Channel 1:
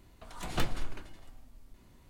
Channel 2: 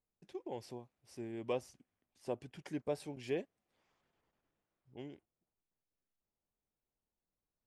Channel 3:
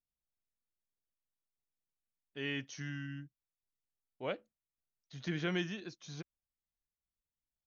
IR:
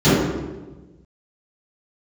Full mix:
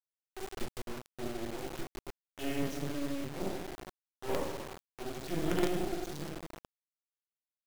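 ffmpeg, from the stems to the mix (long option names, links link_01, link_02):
-filter_complex "[0:a]acontrast=29,volume=-14dB,asplit=2[link_01][link_02];[link_02]volume=-5dB[link_03];[1:a]lowpass=1800,lowshelf=frequency=290:gain=-4.5,aeval=exprs='val(0)*pow(10,-36*(0.5-0.5*cos(2*PI*5*n/s))/20)':channel_layout=same,volume=2dB,asplit=4[link_04][link_05][link_06][link_07];[link_05]volume=-21.5dB[link_08];[link_06]volume=-18.5dB[link_09];[2:a]highpass=470,equalizer=frequency=1500:width_type=o:width=2.7:gain=-8,volume=-5dB,asplit=2[link_10][link_11];[link_11]volume=-10dB[link_12];[link_07]apad=whole_len=337846[link_13];[link_10][link_13]sidechaincompress=threshold=-53dB:ratio=8:attack=16:release=1280[link_14];[3:a]atrim=start_sample=2205[link_15];[link_08][link_12]amix=inputs=2:normalize=0[link_16];[link_16][link_15]afir=irnorm=-1:irlink=0[link_17];[link_03][link_09]amix=inputs=2:normalize=0,aecho=0:1:1179:1[link_18];[link_01][link_04][link_14][link_17][link_18]amix=inputs=5:normalize=0,acrusher=bits=4:dc=4:mix=0:aa=0.000001,asoftclip=type=tanh:threshold=-19dB"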